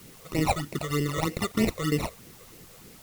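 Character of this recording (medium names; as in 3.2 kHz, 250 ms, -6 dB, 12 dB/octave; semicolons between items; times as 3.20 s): aliases and images of a low sample rate 1.6 kHz, jitter 0%; phasing stages 12, 3.2 Hz, lowest notch 260–1300 Hz; a quantiser's noise floor 10-bit, dither triangular; Vorbis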